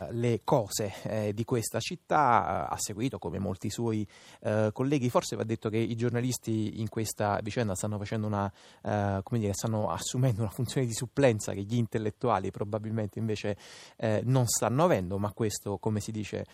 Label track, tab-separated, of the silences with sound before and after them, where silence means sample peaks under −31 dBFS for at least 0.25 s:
4.030000	4.460000	silence
8.480000	8.850000	silence
13.530000	14.000000	silence